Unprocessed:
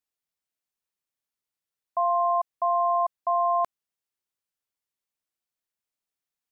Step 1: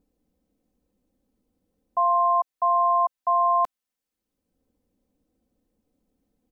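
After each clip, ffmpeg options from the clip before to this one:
ffmpeg -i in.wav -filter_complex "[0:a]aecho=1:1:3.9:0.73,acrossover=split=460[link_01][link_02];[link_01]acompressor=mode=upward:threshold=-49dB:ratio=2.5[link_03];[link_03][link_02]amix=inputs=2:normalize=0" out.wav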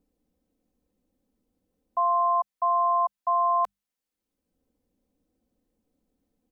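ffmpeg -i in.wav -filter_complex "[0:a]acrossover=split=470[link_01][link_02];[link_01]alimiter=level_in=20.5dB:limit=-24dB:level=0:latency=1:release=132,volume=-20.5dB[link_03];[link_03][link_02]amix=inputs=2:normalize=0,bandreject=frequency=50:width_type=h:width=6,bandreject=frequency=100:width_type=h:width=6,bandreject=frequency=150:width_type=h:width=6,bandreject=frequency=200:width_type=h:width=6,volume=-2dB" out.wav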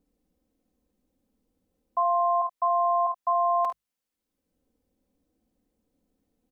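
ffmpeg -i in.wav -af "aecho=1:1:52|74:0.422|0.266" out.wav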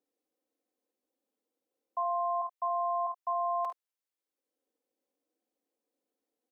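ffmpeg -i in.wav -af "highpass=frequency=340:width=0.5412,highpass=frequency=340:width=1.3066,volume=-7.5dB" out.wav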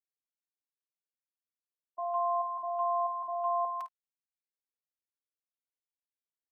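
ffmpeg -i in.wav -filter_complex "[0:a]agate=range=-30dB:threshold=-33dB:ratio=16:detection=peak,acrossover=split=930[link_01][link_02];[link_02]adelay=160[link_03];[link_01][link_03]amix=inputs=2:normalize=0,volume=1.5dB" out.wav

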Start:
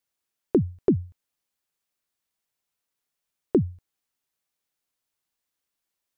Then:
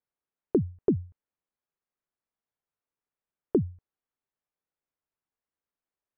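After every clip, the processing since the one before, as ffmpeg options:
ffmpeg -i in.wav -af "lowpass=1600,equalizer=frequency=430:width=7.2:gain=3,volume=-4dB" out.wav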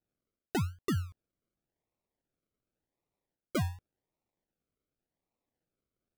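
ffmpeg -i in.wav -af "areverse,acompressor=threshold=-32dB:ratio=16,areverse,acrusher=samples=39:mix=1:aa=0.000001:lfo=1:lforange=23.4:lforate=0.89,volume=3.5dB" out.wav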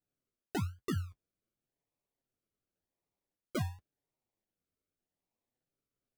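ffmpeg -i in.wav -af "flanger=delay=6.9:depth=4.6:regen=-35:speed=0.51:shape=sinusoidal" out.wav

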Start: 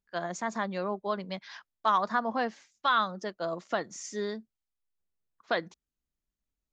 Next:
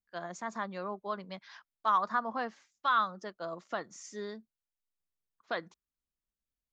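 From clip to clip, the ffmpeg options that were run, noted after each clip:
ffmpeg -i in.wav -af "adynamicequalizer=threshold=0.0112:dfrequency=1200:dqfactor=1.9:tfrequency=1200:tqfactor=1.9:attack=5:release=100:ratio=0.375:range=3.5:mode=boostabove:tftype=bell,volume=-7dB" out.wav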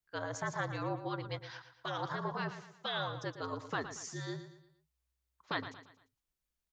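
ffmpeg -i in.wav -af "afftfilt=real='re*lt(hypot(re,im),0.1)':imag='im*lt(hypot(re,im),0.1)':win_size=1024:overlap=0.75,afreqshift=-63,aecho=1:1:115|230|345|460:0.282|0.113|0.0451|0.018,volume=3dB" out.wav

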